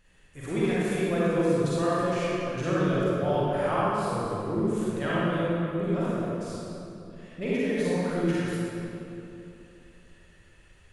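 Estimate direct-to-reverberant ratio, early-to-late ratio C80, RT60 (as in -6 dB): -10.0 dB, -4.5 dB, 2.9 s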